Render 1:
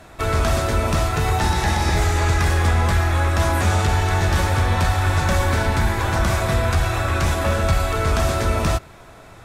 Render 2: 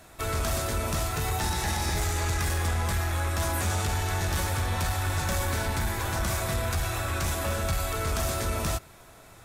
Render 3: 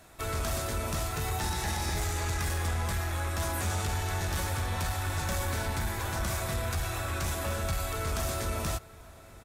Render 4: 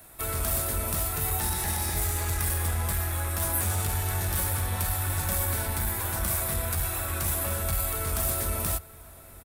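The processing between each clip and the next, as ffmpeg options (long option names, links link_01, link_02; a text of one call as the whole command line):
ffmpeg -i in.wav -af "aemphasis=mode=production:type=50kf,asoftclip=type=tanh:threshold=-11dB,volume=-8.5dB" out.wav
ffmpeg -i in.wav -filter_complex "[0:a]asplit=2[link_01][link_02];[link_02]adelay=874.6,volume=-20dB,highshelf=frequency=4000:gain=-19.7[link_03];[link_01][link_03]amix=inputs=2:normalize=0,volume=-3.5dB" out.wav
ffmpeg -i in.wav -filter_complex "[0:a]acrossover=split=160[link_01][link_02];[link_01]asplit=2[link_03][link_04];[link_04]adelay=22,volume=-5dB[link_05];[link_03][link_05]amix=inputs=2:normalize=0[link_06];[link_02]aexciter=amount=5.5:drive=3.5:freq=8800[link_07];[link_06][link_07]amix=inputs=2:normalize=0" out.wav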